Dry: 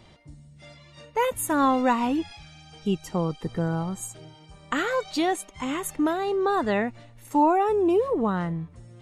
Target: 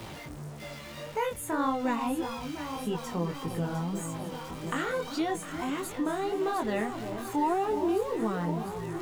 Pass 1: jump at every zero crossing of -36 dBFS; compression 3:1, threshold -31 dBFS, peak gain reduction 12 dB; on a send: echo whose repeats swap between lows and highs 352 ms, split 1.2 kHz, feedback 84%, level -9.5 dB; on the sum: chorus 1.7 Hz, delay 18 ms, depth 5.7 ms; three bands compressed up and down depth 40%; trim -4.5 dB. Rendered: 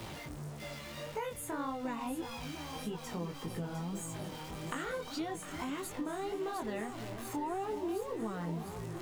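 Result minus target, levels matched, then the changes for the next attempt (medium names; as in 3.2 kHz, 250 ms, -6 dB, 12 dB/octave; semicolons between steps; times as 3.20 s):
compression: peak gain reduction +12 dB
remove: compression 3:1, threshold -31 dBFS, peak gain reduction 12 dB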